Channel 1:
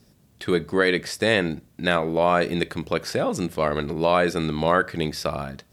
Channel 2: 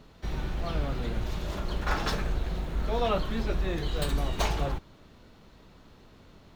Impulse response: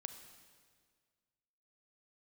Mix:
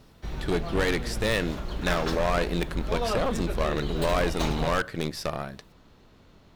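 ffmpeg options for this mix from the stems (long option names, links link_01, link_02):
-filter_complex "[0:a]aeval=exprs='0.531*(cos(1*acos(clip(val(0)/0.531,-1,1)))-cos(1*PI/2))+0.0841*(cos(3*acos(clip(val(0)/0.531,-1,1)))-cos(3*PI/2))+0.0531*(cos(4*acos(clip(val(0)/0.531,-1,1)))-cos(4*PI/2))+0.0133*(cos(8*acos(clip(val(0)/0.531,-1,1)))-cos(8*PI/2))':channel_layout=same,volume=1dB[link_01];[1:a]volume=-1.5dB[link_02];[link_01][link_02]amix=inputs=2:normalize=0,volume=17.5dB,asoftclip=hard,volume=-17.5dB"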